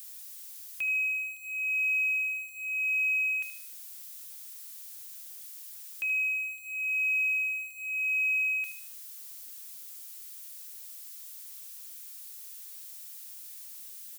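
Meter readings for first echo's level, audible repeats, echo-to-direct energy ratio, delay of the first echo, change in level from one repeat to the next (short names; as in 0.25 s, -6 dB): -11.0 dB, 4, -10.0 dB, 76 ms, -8.0 dB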